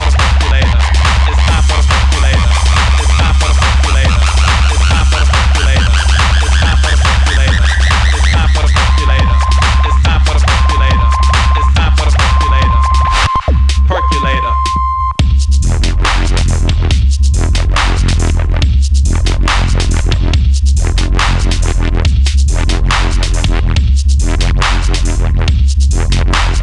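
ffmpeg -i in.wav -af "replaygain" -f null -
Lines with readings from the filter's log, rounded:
track_gain = -4.2 dB
track_peak = 0.592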